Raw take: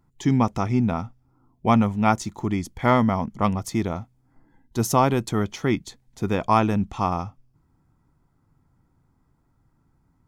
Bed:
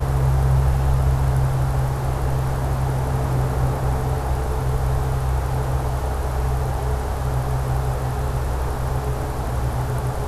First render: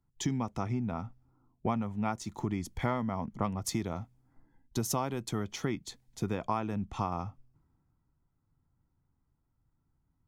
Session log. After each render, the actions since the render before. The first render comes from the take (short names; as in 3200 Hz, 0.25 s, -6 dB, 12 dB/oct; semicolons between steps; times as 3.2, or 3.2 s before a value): compressor 10:1, threshold -29 dBFS, peak gain reduction 16.5 dB; three-band expander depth 40%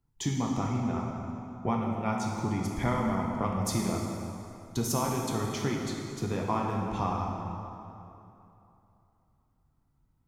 plate-style reverb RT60 2.9 s, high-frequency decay 0.7×, DRR -1.5 dB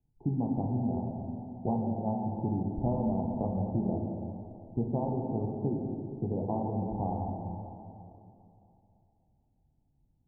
Wiener smoothing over 15 samples; Chebyshev low-pass 860 Hz, order 6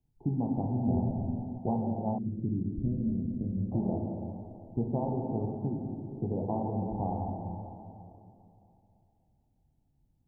0.87–1.58 tilt -2 dB/oct; 2.18–3.72 inverse Chebyshev low-pass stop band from 910 Hz, stop band 50 dB; 5.55–6.15 dynamic EQ 440 Hz, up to -7 dB, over -46 dBFS, Q 1.6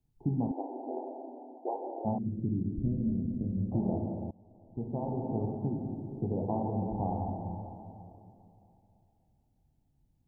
0.51–2.05 brick-wall FIR band-pass 270–1100 Hz; 4.31–5.39 fade in, from -22.5 dB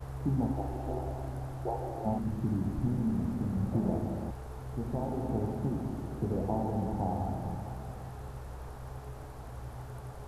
add bed -20 dB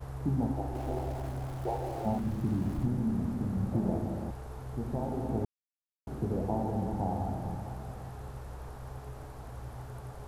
0.75–2.86 zero-crossing step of -44.5 dBFS; 5.45–6.07 mute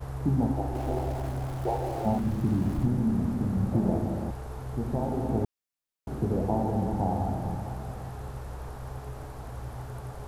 gain +4.5 dB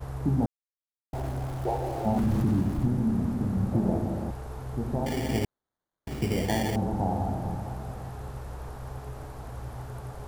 0.46–1.13 mute; 2.16–2.62 fast leveller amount 70%; 5.06–6.76 sample-rate reducer 2600 Hz